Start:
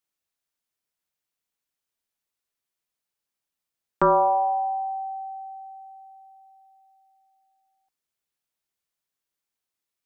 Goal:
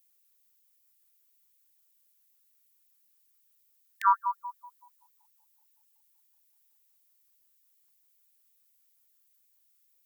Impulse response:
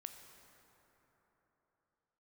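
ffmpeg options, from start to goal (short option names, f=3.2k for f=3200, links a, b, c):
-af "aemphasis=mode=production:type=50fm,afftfilt=real='re*gte(b*sr/1024,830*pow(1800/830,0.5+0.5*sin(2*PI*5.3*pts/sr)))':imag='im*gte(b*sr/1024,830*pow(1800/830,0.5+0.5*sin(2*PI*5.3*pts/sr)))':win_size=1024:overlap=0.75,volume=2dB"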